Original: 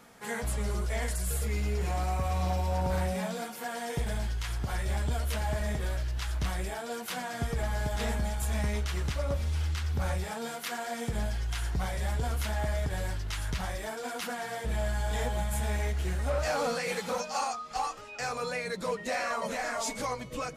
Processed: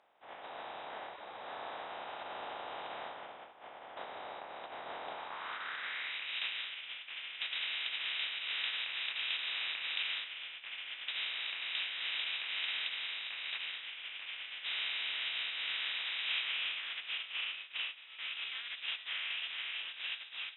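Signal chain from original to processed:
compressing power law on the bin magnitudes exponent 0.25
voice inversion scrambler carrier 3,800 Hz
band-pass filter sweep 750 Hz → 2,700 Hz, 0:05.08–0:06.28

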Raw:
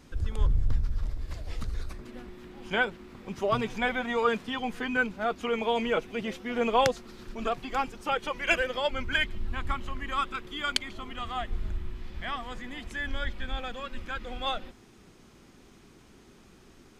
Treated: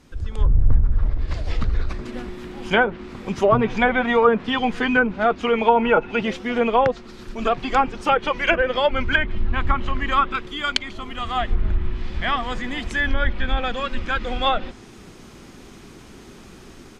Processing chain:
0:05.68–0:06.23: hollow resonant body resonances 890/1,400/2,600 Hz, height 13 dB
automatic gain control gain up to 11 dB
treble cut that deepens with the level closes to 1,200 Hz, closed at −12 dBFS
level +1 dB

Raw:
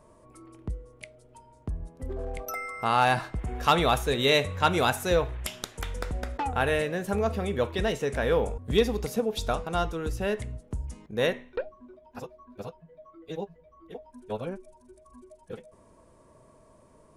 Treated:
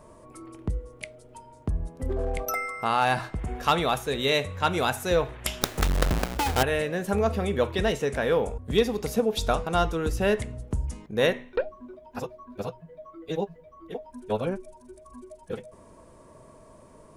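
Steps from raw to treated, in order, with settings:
0:05.61–0:06.63: each half-wave held at its own peak
mains-hum notches 60/120 Hz
speech leveller within 4 dB 0.5 s
level +2 dB

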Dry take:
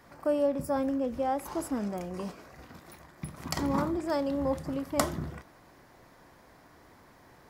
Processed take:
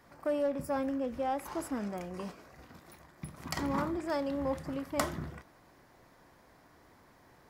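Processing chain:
dynamic equaliser 1,900 Hz, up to +5 dB, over −48 dBFS, Q 0.76
in parallel at −10 dB: wave folding −23 dBFS
on the sum: level −6.5 dB

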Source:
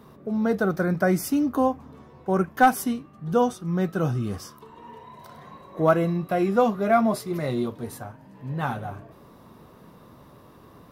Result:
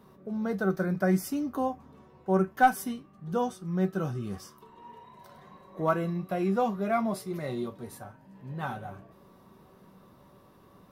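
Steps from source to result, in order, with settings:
tuned comb filter 190 Hz, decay 0.16 s, harmonics all, mix 70%

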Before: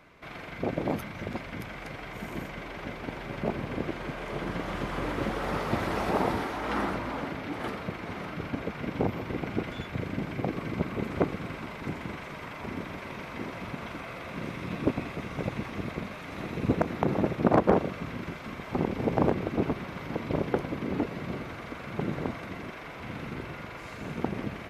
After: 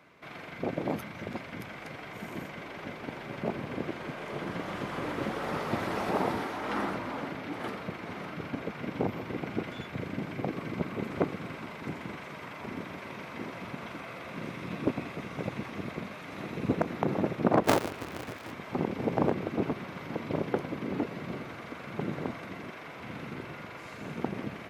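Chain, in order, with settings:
0:17.64–0:18.52: sub-harmonics by changed cycles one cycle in 2, inverted
high-pass filter 110 Hz 12 dB per octave
level −2 dB

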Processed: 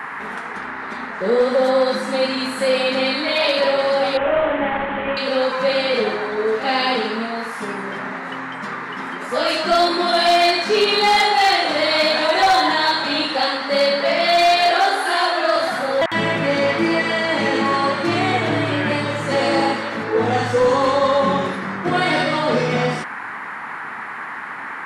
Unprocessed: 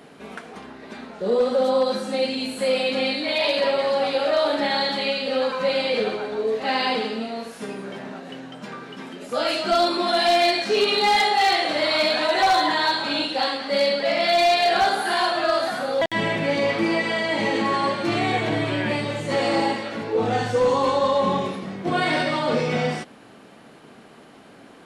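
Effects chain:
0:04.17–0:05.17: variable-slope delta modulation 16 kbit/s
0:14.71–0:15.56: Chebyshev high-pass filter 260 Hz, order 10
noise in a band 810–2,000 Hz −34 dBFS
level +3.5 dB

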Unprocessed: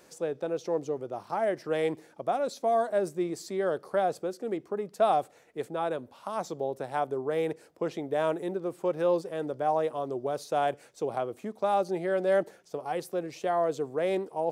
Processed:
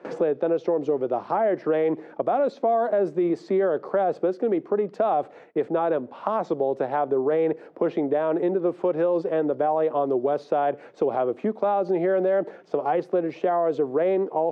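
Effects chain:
noise gate with hold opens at −48 dBFS
spectral tilt −2.5 dB per octave
brickwall limiter −22 dBFS, peak gain reduction 10.5 dB
band-pass filter 270–2,800 Hz
multiband upward and downward compressor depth 70%
level +8 dB

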